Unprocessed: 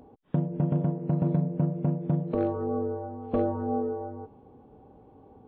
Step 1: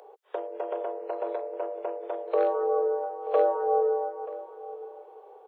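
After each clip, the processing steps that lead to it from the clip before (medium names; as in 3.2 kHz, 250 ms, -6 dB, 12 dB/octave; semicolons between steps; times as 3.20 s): steep high-pass 400 Hz 72 dB/octave; echo from a far wall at 160 m, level -15 dB; trim +6.5 dB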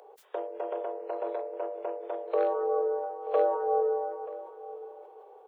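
decay stretcher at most 64 dB/s; trim -2.5 dB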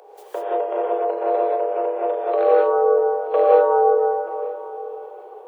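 gated-style reverb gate 210 ms rising, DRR -5 dB; trim +5.5 dB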